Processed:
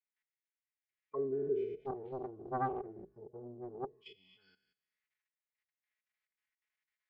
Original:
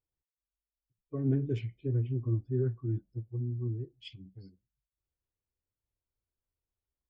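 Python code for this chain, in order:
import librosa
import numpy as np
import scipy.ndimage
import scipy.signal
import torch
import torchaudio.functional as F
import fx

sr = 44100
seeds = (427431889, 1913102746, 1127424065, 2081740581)

y = fx.spec_trails(x, sr, decay_s=0.8)
y = fx.peak_eq(y, sr, hz=240.0, db=-12.5, octaves=2.1)
y = fx.level_steps(y, sr, step_db=15)
y = fx.auto_wah(y, sr, base_hz=390.0, top_hz=2000.0, q=4.1, full_db=-42.5, direction='down')
y = y + 0.67 * np.pad(y, (int(4.7 * sr / 1000.0), 0))[:len(y)]
y = fx.doppler_dist(y, sr, depth_ms=0.96, at=(1.83, 3.98))
y = y * 10.0 ** (16.0 / 20.0)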